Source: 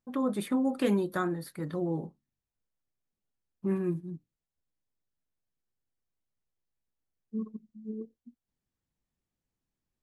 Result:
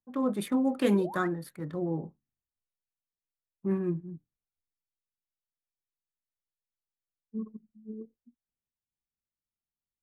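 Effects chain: local Wiener filter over 9 samples; painted sound rise, 0.93–1.27 s, 300–2100 Hz -41 dBFS; three bands expanded up and down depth 40%

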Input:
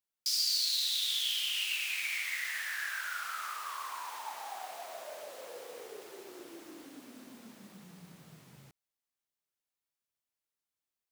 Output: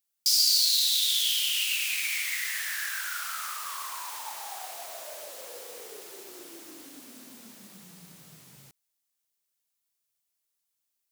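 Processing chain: treble shelf 3.6 kHz +12 dB

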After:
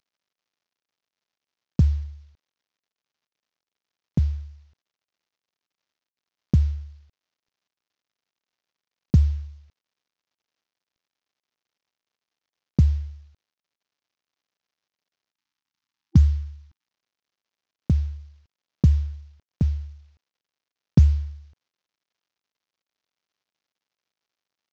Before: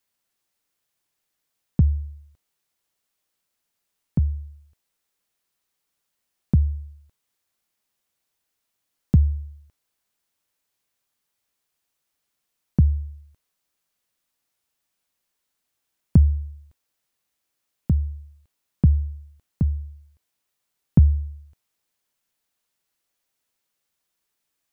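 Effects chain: CVSD coder 32 kbps; time-frequency box 15.33–16.86 s, 340–790 Hz -14 dB

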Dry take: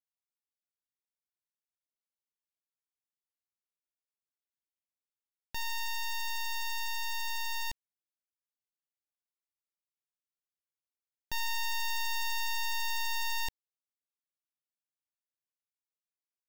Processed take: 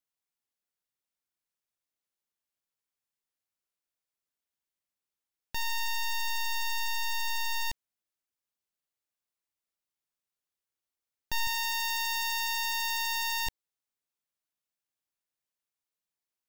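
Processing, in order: 11.47–13.47 s: tone controls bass -11 dB, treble +1 dB; trim +3.5 dB

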